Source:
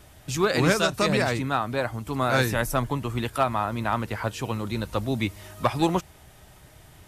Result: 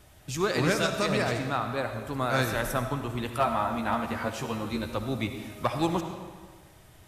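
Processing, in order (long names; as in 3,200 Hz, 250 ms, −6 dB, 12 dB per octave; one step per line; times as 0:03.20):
0:00.98–0:01.65: surface crackle 40 per second −41 dBFS
0:03.38–0:04.91: double-tracking delay 13 ms −2.5 dB
convolution reverb RT60 1.6 s, pre-delay 30 ms, DRR 6.5 dB
level −4.5 dB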